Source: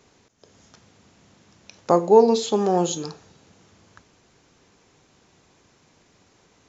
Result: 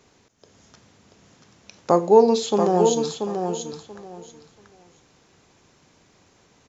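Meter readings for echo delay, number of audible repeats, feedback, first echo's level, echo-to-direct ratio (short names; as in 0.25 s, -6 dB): 0.684 s, 3, 20%, -6.0 dB, -6.0 dB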